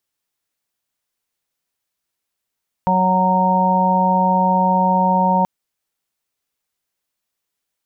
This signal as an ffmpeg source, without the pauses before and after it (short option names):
-f lavfi -i "aevalsrc='0.126*sin(2*PI*185*t)+0.015*sin(2*PI*370*t)+0.075*sin(2*PI*555*t)+0.0794*sin(2*PI*740*t)+0.178*sin(2*PI*925*t)':d=2.58:s=44100"